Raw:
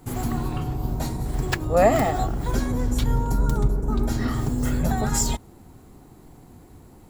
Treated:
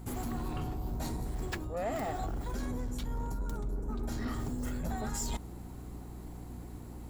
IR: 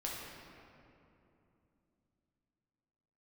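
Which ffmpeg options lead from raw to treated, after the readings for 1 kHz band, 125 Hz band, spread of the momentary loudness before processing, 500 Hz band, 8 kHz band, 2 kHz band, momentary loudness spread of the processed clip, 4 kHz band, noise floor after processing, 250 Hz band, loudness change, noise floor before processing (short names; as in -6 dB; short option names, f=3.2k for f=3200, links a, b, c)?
-13.0 dB, -13.0 dB, 9 LU, -15.0 dB, -12.5 dB, -12.5 dB, 11 LU, -11.5 dB, -45 dBFS, -11.5 dB, -13.5 dB, -49 dBFS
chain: -af "equalizer=f=130:t=o:w=0.33:g=-8.5,areverse,acompressor=threshold=-31dB:ratio=6,areverse,aeval=exprs='val(0)+0.00631*(sin(2*PI*60*n/s)+sin(2*PI*2*60*n/s)/2+sin(2*PI*3*60*n/s)/3+sin(2*PI*4*60*n/s)/4+sin(2*PI*5*60*n/s)/5)':c=same,asoftclip=type=tanh:threshold=-27.5dB"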